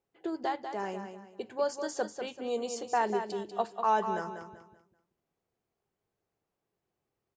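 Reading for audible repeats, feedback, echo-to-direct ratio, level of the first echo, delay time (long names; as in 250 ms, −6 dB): 3, 32%, −7.5 dB, −8.0 dB, 193 ms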